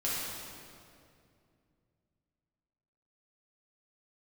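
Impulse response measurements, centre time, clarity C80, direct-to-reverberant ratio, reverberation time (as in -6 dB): 0.143 s, -0.5 dB, -8.5 dB, 2.4 s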